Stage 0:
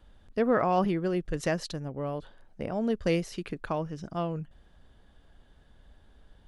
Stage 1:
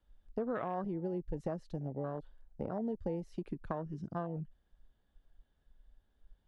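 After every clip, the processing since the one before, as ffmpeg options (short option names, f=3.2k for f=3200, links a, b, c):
-filter_complex "[0:a]acrossover=split=320|2300[a][b][c];[c]alimiter=level_in=14dB:limit=-24dB:level=0:latency=1:release=23,volume=-14dB[d];[a][b][d]amix=inputs=3:normalize=0,afwtdn=0.0251,acompressor=threshold=-33dB:ratio=5,volume=-1dB"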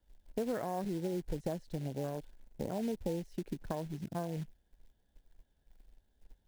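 -af "equalizer=f=2.5k:t=o:w=0.6:g=-5,acrusher=bits=4:mode=log:mix=0:aa=0.000001,equalizer=f=1.2k:t=o:w=0.32:g=-11.5,volume=1dB"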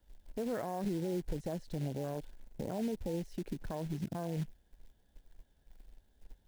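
-af "alimiter=level_in=8.5dB:limit=-24dB:level=0:latency=1:release=48,volume=-8.5dB,volume=4.5dB"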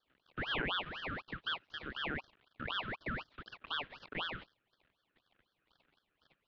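-filter_complex "[0:a]asplit=2[a][b];[b]aeval=exprs='sgn(val(0))*max(abs(val(0))-0.00168,0)':c=same,volume=-6dB[c];[a][c]amix=inputs=2:normalize=0,highpass=f=510:t=q:w=0.5412,highpass=f=510:t=q:w=1.307,lowpass=f=2.5k:t=q:w=0.5176,lowpass=f=2.5k:t=q:w=0.7071,lowpass=f=2.5k:t=q:w=1.932,afreqshift=280,aeval=exprs='val(0)*sin(2*PI*1500*n/s+1500*0.65/4*sin(2*PI*4*n/s))':c=same,volume=4dB"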